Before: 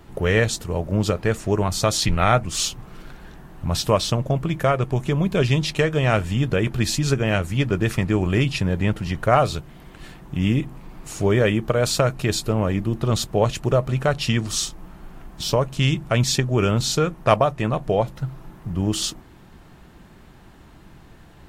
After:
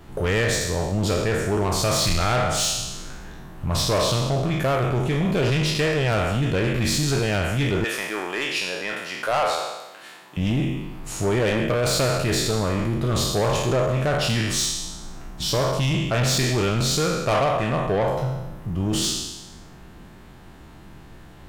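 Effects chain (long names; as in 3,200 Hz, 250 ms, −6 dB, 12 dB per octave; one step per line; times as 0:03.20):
peak hold with a decay on every bin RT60 1.01 s
0:07.84–0:10.37: high-pass filter 560 Hz 12 dB per octave
soft clipping −16.5 dBFS, distortion −10 dB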